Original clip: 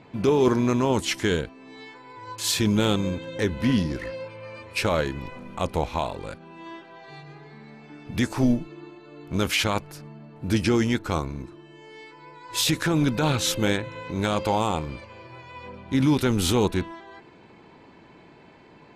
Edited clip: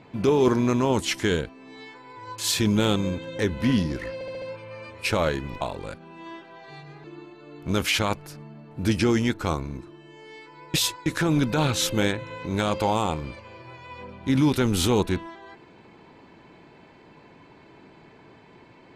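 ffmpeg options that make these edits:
-filter_complex "[0:a]asplit=9[a][b][c][d][e][f][g][h][i];[a]atrim=end=4.212[j];[b]atrim=start=4.138:end=4.212[k];[c]atrim=start=4.138:end=4.212[l];[d]atrim=start=4.138:end=4.212[m];[e]atrim=start=4.138:end=5.332[n];[f]atrim=start=6.008:end=7.442[o];[g]atrim=start=8.688:end=12.392[p];[h]atrim=start=12.388:end=12.712,asetpts=PTS-STARTPTS,areverse[q];[i]atrim=start=12.708[r];[j][k]acrossfade=d=0.004:c1=hsin:c2=hsin[s];[s][l]acrossfade=d=0.004:c1=hsin:c2=hsin[t];[t][m]acrossfade=d=0.004:c1=hsin:c2=hsin[u];[u][n]acrossfade=d=0.004:c1=hsin:c2=hsin[v];[v][o]acrossfade=d=0.004:c1=hsin:c2=hsin[w];[w][p]acrossfade=d=0.004:c1=hsin:c2=hsin[x];[x][q]acrossfade=d=0.004:c1=hsin:c2=hsin[y];[y][r]acrossfade=d=0.004:c1=hsin:c2=hsin"

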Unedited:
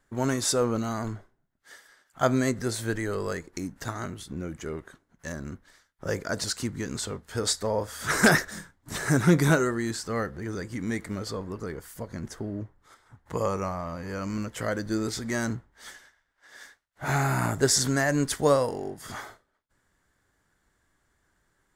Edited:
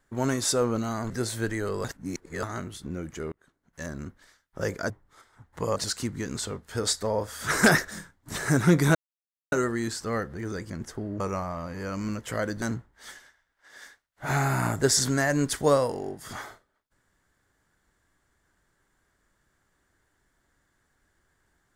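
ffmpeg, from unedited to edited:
-filter_complex "[0:a]asplit=11[a][b][c][d][e][f][g][h][i][j][k];[a]atrim=end=1.102[l];[b]atrim=start=2.558:end=3.302[m];[c]atrim=start=3.298:end=3.892,asetpts=PTS-STARTPTS,areverse[n];[d]atrim=start=3.888:end=4.78,asetpts=PTS-STARTPTS,afade=t=out:st=0.888:d=0.004:c=hsin[o];[e]atrim=start=4.78:end=6.362,asetpts=PTS-STARTPTS,afade=t=in:d=0.56[p];[f]atrim=start=12.628:end=13.492[q];[g]atrim=start=6.358:end=9.55,asetpts=PTS-STARTPTS,afade=t=out:st=3.188:d=0.004:c=hsin,apad=pad_dur=0.57[r];[h]atrim=start=9.55:end=10.732,asetpts=PTS-STARTPTS,afade=t=in:d=0.004:c=hsin[s];[i]atrim=start=12.128:end=12.632[t];[j]atrim=start=13.488:end=14.912[u];[k]atrim=start=15.408[v];[l][m]acrossfade=d=0.004:c1=hsin:c2=hsin[w];[w][n]acrossfade=d=0.004:c1=hsin:c2=hsin[x];[o][p]concat=n=2:v=0:a=1[y];[x][y]acrossfade=d=0.004:c1=hsin:c2=hsin[z];[z][q]acrossfade=d=0.004:c1=hsin:c2=hsin[aa];[r][s]concat=n=2:v=0:a=1[ab];[aa][ab]acrossfade=d=0.004:c1=hsin:c2=hsin[ac];[ac][t]acrossfade=d=0.004:c1=hsin:c2=hsin[ad];[ad][u]acrossfade=d=0.004:c1=hsin:c2=hsin[ae];[ae][v]acrossfade=d=0.004:c1=hsin:c2=hsin"

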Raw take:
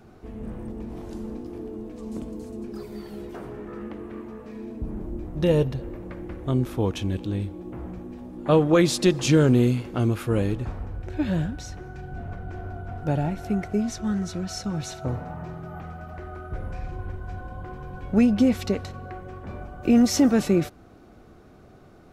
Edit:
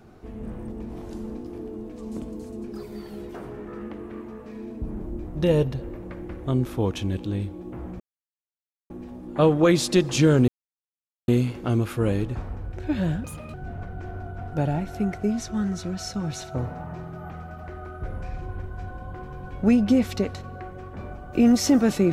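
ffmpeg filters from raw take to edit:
-filter_complex "[0:a]asplit=5[a][b][c][d][e];[a]atrim=end=8,asetpts=PTS-STARTPTS,afade=t=out:st=7.996:d=0.004:c=hsin,apad=pad_dur=0.9[f];[b]atrim=start=8:end=9.58,asetpts=PTS-STARTPTS,afade=t=in:d=0.004:c=hsin,afade=t=out:st=1.576:d=0.004:c=hsin,apad=pad_dur=0.8[g];[c]atrim=start=9.58:end=11.544,asetpts=PTS-STARTPTS,afade=t=in:d=0.004:c=hsin[h];[d]atrim=start=11.54:end=12.04,asetpts=PTS-STARTPTS,asetrate=73647,aresample=44100[i];[e]atrim=start=12.036[j];[f][g][h]concat=n=3:v=0:a=1[k];[k][i]acrossfade=d=0.004:c1=hsin:c2=hsin[l];[l][j]acrossfade=d=0.004:c1=hsin:c2=hsin"

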